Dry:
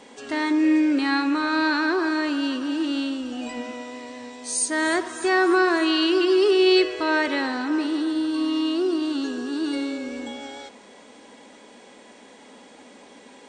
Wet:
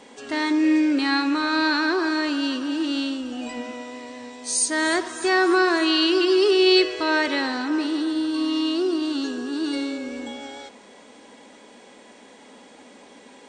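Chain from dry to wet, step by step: dynamic EQ 4900 Hz, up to +5 dB, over -41 dBFS, Q 0.92

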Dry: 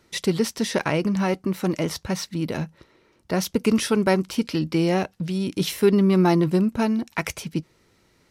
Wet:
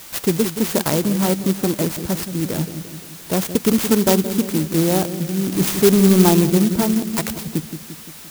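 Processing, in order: 5.52–6.29 zero-crossing step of -27.5 dBFS; dark delay 0.173 s, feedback 55%, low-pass 470 Hz, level -8.5 dB; whine 5400 Hz -39 dBFS; clock jitter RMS 0.13 ms; gain +3.5 dB

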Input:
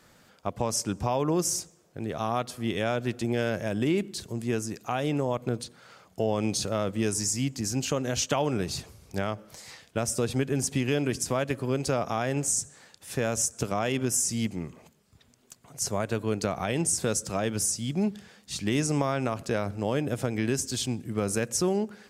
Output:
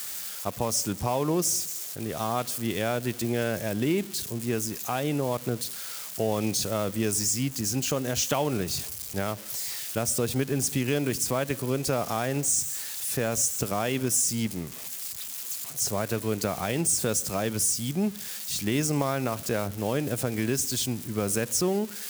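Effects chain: switching spikes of -27 dBFS

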